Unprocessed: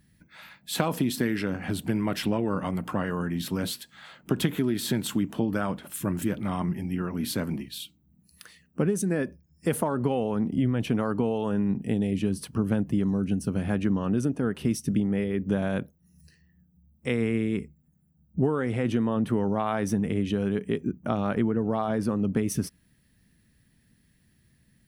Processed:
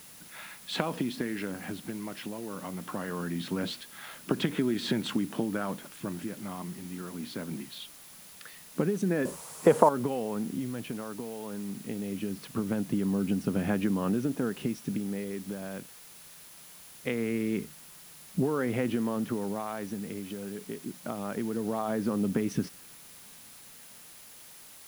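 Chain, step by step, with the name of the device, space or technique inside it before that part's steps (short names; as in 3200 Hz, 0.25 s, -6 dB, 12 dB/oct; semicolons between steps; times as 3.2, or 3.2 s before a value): medium wave at night (BPF 160–3700 Hz; compressor, threshold -27 dBFS, peak gain reduction 7.5 dB; tremolo 0.22 Hz, depth 71%; whine 10000 Hz -59 dBFS; white noise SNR 18 dB); 9.25–9.89 graphic EQ 125/500/1000/8000 Hz +5/+10/+12/+10 dB; gain +3.5 dB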